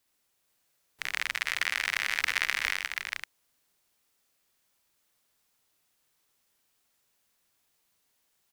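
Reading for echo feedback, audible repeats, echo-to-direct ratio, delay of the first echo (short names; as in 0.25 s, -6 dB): no steady repeat, 5, -0.5 dB, 52 ms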